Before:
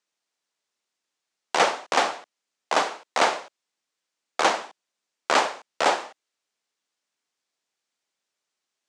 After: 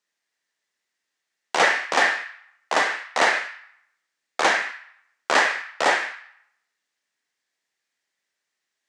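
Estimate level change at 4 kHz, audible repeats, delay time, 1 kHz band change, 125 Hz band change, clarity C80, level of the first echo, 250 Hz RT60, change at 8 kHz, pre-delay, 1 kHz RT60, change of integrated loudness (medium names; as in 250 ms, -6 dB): +1.5 dB, no echo, no echo, 0.0 dB, no reading, 6.5 dB, no echo, 0.75 s, +0.5 dB, 25 ms, 0.75 s, +2.5 dB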